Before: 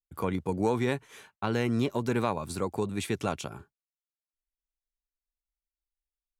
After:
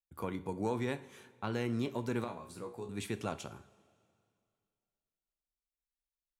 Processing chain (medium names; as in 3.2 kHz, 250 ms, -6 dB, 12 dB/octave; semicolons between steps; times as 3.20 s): 2.24–2.89 s: feedback comb 60 Hz, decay 0.27 s, harmonics all, mix 90%; two-slope reverb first 0.42 s, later 2.4 s, from -17 dB, DRR 10.5 dB; trim -7.5 dB